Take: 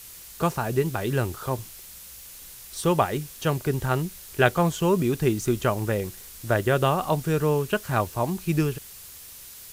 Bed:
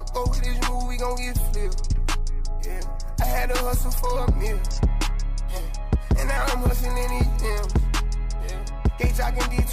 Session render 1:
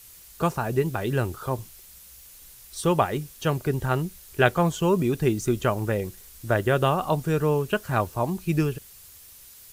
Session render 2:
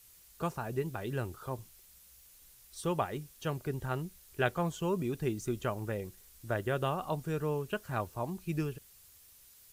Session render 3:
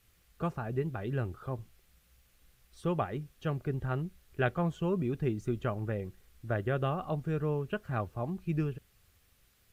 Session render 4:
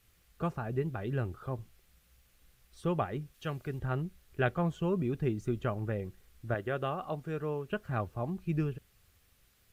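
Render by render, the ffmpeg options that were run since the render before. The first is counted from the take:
-af "afftdn=nr=6:nf=-44"
-af "volume=0.299"
-af "bass=f=250:g=4,treble=f=4000:g=-14,bandreject=f=950:w=8.2"
-filter_complex "[0:a]asettb=1/sr,asplit=3[s0][s1][s2];[s0]atrim=end=3.344[s3];[s1]atrim=start=3.34:end=3.79,asetpts=PTS-STARTPTS,afade=t=in:d=0.004:c=qsin,afade=t=out:st=0.446:d=0.004:c=qsin,tiltshelf=f=1300:g=-4.5[s4];[s2]atrim=start=3.786[s5];[s3][s4]acrossfade=d=0.004:c1=hsin:c2=qsin[s6];[s6][s5]acrossfade=d=0.004:c1=qsin:c2=hsin,asettb=1/sr,asplit=3[s7][s8][s9];[s7]atrim=end=6.544[s10];[s8]atrim=start=6.54:end=7.7,asetpts=PTS-STARTPTS,afade=t=in:d=0.004:c=qsin,afade=t=out:st=1.156:d=0.004:c=qsin,lowshelf=f=190:g=-10.5[s11];[s9]atrim=start=7.696[s12];[s10][s11]acrossfade=d=0.004:c1=hsin:c2=qsin[s13];[s13][s12]acrossfade=d=0.004:c1=qsin:c2=hsin"

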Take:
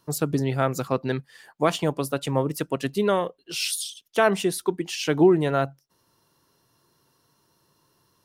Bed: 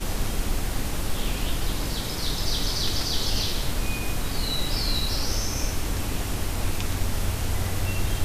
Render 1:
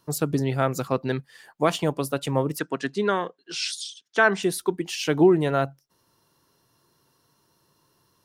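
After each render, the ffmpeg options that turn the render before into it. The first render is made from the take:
-filter_complex "[0:a]asettb=1/sr,asplit=3[s0][s1][s2];[s0]atrim=end=2.594[s3];[s1]atrim=start=2.59:end=4.43,asetpts=PTS-STARTPTS,afade=t=in:d=0.004:c=qsin,afade=t=out:st=1.836:d=0.004:c=qsin,highpass=190,equalizer=f=560:t=q:w=4:g=-7,equalizer=f=1600:t=q:w=4:g=8,equalizer=f=2800:t=q:w=4:g=-4,lowpass=f=7500:w=0.5412,lowpass=f=7500:w=1.3066[s4];[s2]atrim=start=4.426[s5];[s3][s4]acrossfade=d=0.004:c1=hsin:c2=qsin[s6];[s6][s5]acrossfade=d=0.004:c1=qsin:c2=hsin"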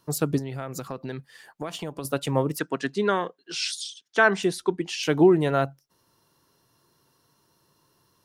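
-filter_complex "[0:a]asettb=1/sr,asplit=3[s0][s1][s2];[s0]atrim=end=0.384[s3];[s1]atrim=start=0.38:end=2.05,asetpts=PTS-STARTPTS,afade=t=in:d=0.004:c=qsin,afade=t=out:st=1.666:d=0.004:c=qsin,acompressor=threshold=0.0316:ratio=4:attack=3.2:release=140:knee=1:detection=peak[s4];[s2]atrim=start=2.046[s5];[s3][s4]acrossfade=d=0.004:c1=hsin:c2=qsin[s6];[s6][s5]acrossfade=d=0.004:c1=qsin:c2=hsin,asettb=1/sr,asplit=3[s7][s8][s9];[s7]atrim=end=4.464[s10];[s8]atrim=start=4.46:end=5.03,asetpts=PTS-STARTPTS,afade=t=in:d=0.004:c=qsin,afade=t=out:st=0.566:d=0.004:c=qsin,lowpass=7500[s11];[s9]atrim=start=5.026[s12];[s10][s11]acrossfade=d=0.004:c1=hsin:c2=qsin[s13];[s13][s12]acrossfade=d=0.004:c1=qsin:c2=hsin"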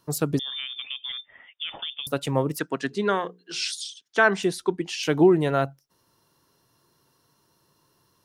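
-filter_complex "[0:a]asettb=1/sr,asplit=3[s0][s1][s2];[s0]atrim=end=0.394[s3];[s1]atrim=start=0.39:end=2.07,asetpts=PTS-STARTPTS,afade=t=in:d=0.004:c=qsin,afade=t=out:st=1.676:d=0.004:c=qsin,lowpass=f=3100:t=q:w=0.5098,lowpass=f=3100:t=q:w=0.6013,lowpass=f=3100:t=q:w=0.9,lowpass=f=3100:t=q:w=2.563,afreqshift=-3700[s4];[s2]atrim=start=2.066[s5];[s3][s4]acrossfade=d=0.004:c1=hsin:c2=qsin[s6];[s6][s5]acrossfade=d=0.004:c1=qsin:c2=hsin,asplit=3[s7][s8][s9];[s7]afade=t=out:st=2.9:d=0.02[s10];[s8]bandreject=f=60:t=h:w=6,bandreject=f=120:t=h:w=6,bandreject=f=180:t=h:w=6,bandreject=f=240:t=h:w=6,bandreject=f=300:t=h:w=6,bandreject=f=360:t=h:w=6,bandreject=f=420:t=h:w=6,bandreject=f=480:t=h:w=6,afade=t=in:st=2.9:d=0.02,afade=t=out:st=3.74:d=0.02[s11];[s9]afade=t=in:st=3.74:d=0.02[s12];[s10][s11][s12]amix=inputs=3:normalize=0"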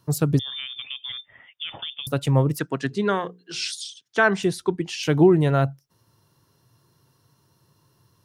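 -af "equalizer=f=110:w=1.3:g=13"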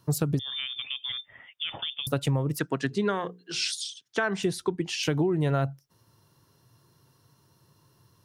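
-af "alimiter=limit=0.282:level=0:latency=1:release=254,acompressor=threshold=0.0794:ratio=6"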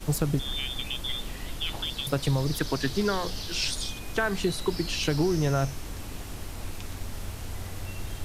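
-filter_complex "[1:a]volume=0.316[s0];[0:a][s0]amix=inputs=2:normalize=0"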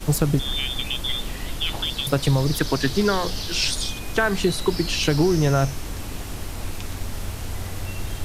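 -af "volume=2"

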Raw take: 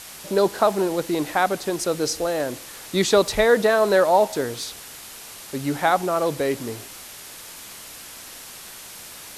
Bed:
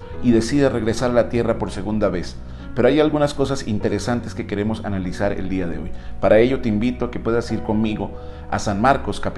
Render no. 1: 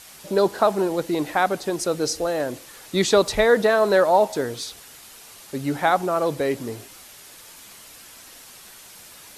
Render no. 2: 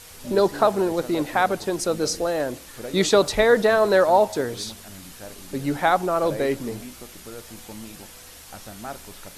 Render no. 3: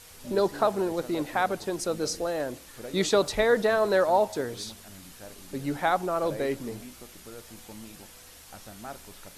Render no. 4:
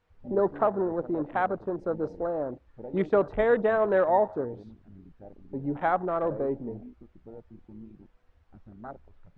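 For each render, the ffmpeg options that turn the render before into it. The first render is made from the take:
-af "afftdn=nr=6:nf=-40"
-filter_complex "[1:a]volume=0.1[s0];[0:a][s0]amix=inputs=2:normalize=0"
-af "volume=0.531"
-af "lowpass=1600,afwtdn=0.0126"

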